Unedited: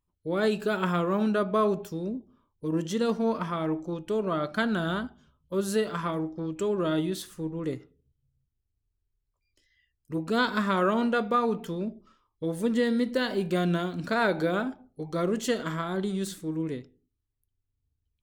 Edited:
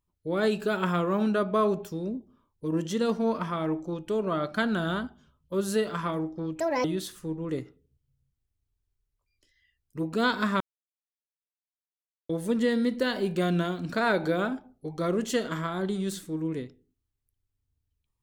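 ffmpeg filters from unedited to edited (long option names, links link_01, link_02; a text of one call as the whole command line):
ffmpeg -i in.wav -filter_complex "[0:a]asplit=5[link_01][link_02][link_03][link_04][link_05];[link_01]atrim=end=6.604[link_06];[link_02]atrim=start=6.6:end=6.99,asetpts=PTS-STARTPTS,asetrate=70560,aresample=44100,atrim=end_sample=10749,asetpts=PTS-STARTPTS[link_07];[link_03]atrim=start=6.986:end=10.75,asetpts=PTS-STARTPTS,afade=type=out:start_time=3.76:duration=0.004:curve=hsin[link_08];[link_04]atrim=start=10.75:end=12.44,asetpts=PTS-STARTPTS,volume=0[link_09];[link_05]atrim=start=12.44,asetpts=PTS-STARTPTS,afade=type=in:duration=0.004:curve=hsin[link_10];[link_06][link_07]acrossfade=duration=0.004:curve1=hsin:curve2=hsin[link_11];[link_08][link_09][link_10]concat=n=3:v=0:a=1[link_12];[link_11][link_12]acrossfade=duration=0.004:curve1=hsin:curve2=hsin" out.wav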